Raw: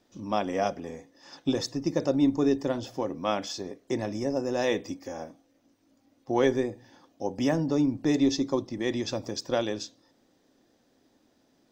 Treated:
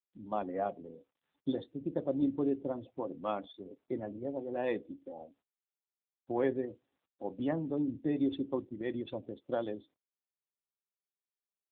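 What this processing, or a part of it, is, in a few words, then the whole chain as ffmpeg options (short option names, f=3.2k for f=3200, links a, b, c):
mobile call with aggressive noise cancelling: -af "highpass=f=120:p=1,afftdn=nr=36:nf=-36,volume=-6dB" -ar 8000 -c:a libopencore_amrnb -b:a 7950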